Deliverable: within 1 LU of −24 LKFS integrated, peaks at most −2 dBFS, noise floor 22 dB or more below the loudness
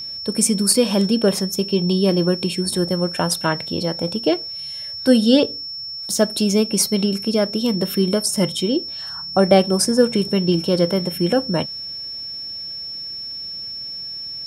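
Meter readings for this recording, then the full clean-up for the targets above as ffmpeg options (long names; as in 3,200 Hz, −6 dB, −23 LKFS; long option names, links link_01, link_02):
interfering tone 5,400 Hz; level of the tone −28 dBFS; integrated loudness −19.5 LKFS; sample peak −1.0 dBFS; target loudness −24.0 LKFS
→ -af "bandreject=frequency=5400:width=30"
-af "volume=-4.5dB"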